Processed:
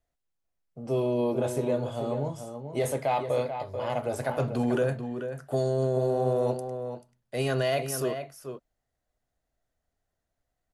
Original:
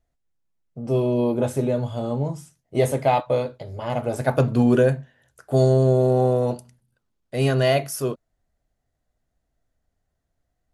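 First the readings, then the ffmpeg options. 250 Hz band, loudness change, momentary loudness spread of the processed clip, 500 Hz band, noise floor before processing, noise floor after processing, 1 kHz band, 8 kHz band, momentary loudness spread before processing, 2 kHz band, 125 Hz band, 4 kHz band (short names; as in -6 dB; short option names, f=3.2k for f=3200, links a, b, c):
-8.0 dB, -7.5 dB, 11 LU, -6.0 dB, -76 dBFS, -83 dBFS, -5.5 dB, -3.0 dB, 14 LU, -5.5 dB, -9.5 dB, -5.5 dB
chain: -filter_complex "[0:a]acrossover=split=370[a][b];[b]acontrast=47[c];[a][c]amix=inputs=2:normalize=0,alimiter=limit=-10dB:level=0:latency=1:release=29,asplit=2[d][e];[e]adelay=437.3,volume=-8dB,highshelf=f=4k:g=-9.84[f];[d][f]amix=inputs=2:normalize=0,volume=-8.5dB"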